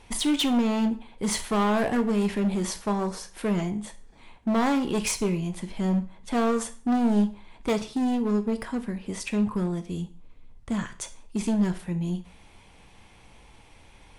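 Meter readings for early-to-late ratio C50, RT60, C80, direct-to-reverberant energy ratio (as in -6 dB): 15.0 dB, 0.40 s, 19.0 dB, 8.5 dB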